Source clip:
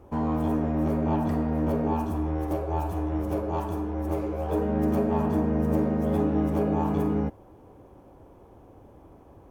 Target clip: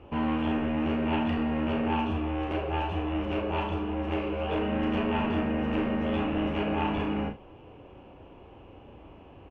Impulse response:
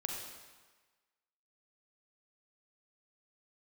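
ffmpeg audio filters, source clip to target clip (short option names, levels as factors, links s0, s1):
-filter_complex "[0:a]acrossover=split=1300[s0][s1];[s0]asoftclip=type=tanh:threshold=0.0531[s2];[s2][s1]amix=inputs=2:normalize=0,lowpass=f=2800:t=q:w=9.3,aecho=1:1:35|69:0.531|0.178"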